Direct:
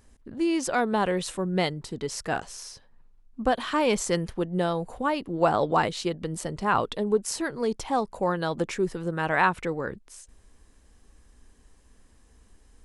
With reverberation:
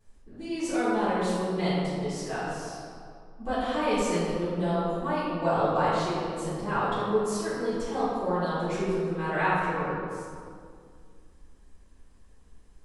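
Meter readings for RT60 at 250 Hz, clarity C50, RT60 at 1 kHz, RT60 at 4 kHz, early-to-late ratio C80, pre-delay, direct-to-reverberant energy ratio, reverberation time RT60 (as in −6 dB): 2.5 s, −3.5 dB, 2.1 s, 1.3 s, −1.0 dB, 3 ms, −14.5 dB, 2.2 s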